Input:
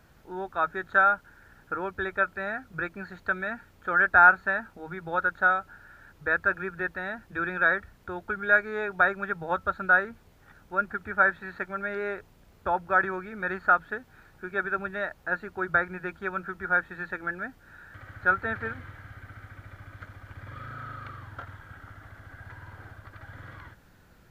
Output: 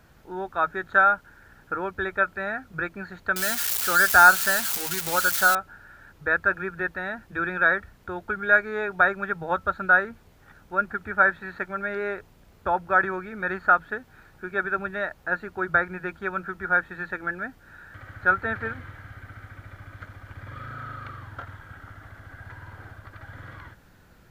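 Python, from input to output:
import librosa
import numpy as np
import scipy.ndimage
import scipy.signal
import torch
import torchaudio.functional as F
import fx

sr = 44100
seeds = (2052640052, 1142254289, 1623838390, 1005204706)

y = fx.crossing_spikes(x, sr, level_db=-17.5, at=(3.36, 5.55))
y = y * 10.0 ** (2.5 / 20.0)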